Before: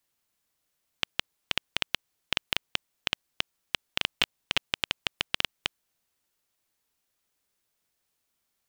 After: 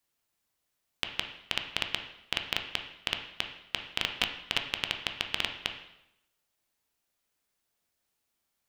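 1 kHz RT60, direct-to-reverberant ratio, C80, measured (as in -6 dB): 0.85 s, 4.5 dB, 10.5 dB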